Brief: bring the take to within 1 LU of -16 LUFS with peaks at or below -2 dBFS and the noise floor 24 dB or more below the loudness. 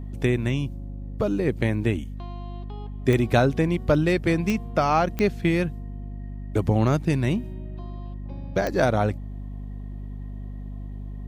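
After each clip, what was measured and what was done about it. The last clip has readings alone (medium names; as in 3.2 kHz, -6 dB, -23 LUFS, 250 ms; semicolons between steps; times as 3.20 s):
clicks found 4; hum 50 Hz; highest harmonic 250 Hz; hum level -32 dBFS; loudness -24.0 LUFS; peak level -7.0 dBFS; loudness target -16.0 LUFS
-> de-click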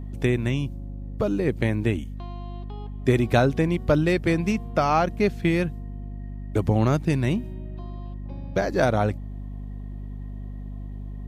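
clicks found 0; hum 50 Hz; highest harmonic 250 Hz; hum level -32 dBFS
-> hum notches 50/100/150/200/250 Hz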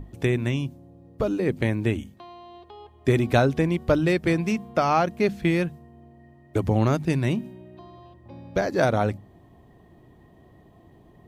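hum not found; loudness -24.5 LUFS; peak level -6.5 dBFS; loudness target -16.0 LUFS
-> trim +8.5 dB; peak limiter -2 dBFS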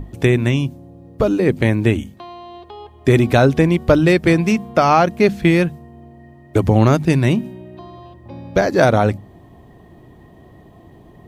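loudness -16.0 LUFS; peak level -2.0 dBFS; noise floor -45 dBFS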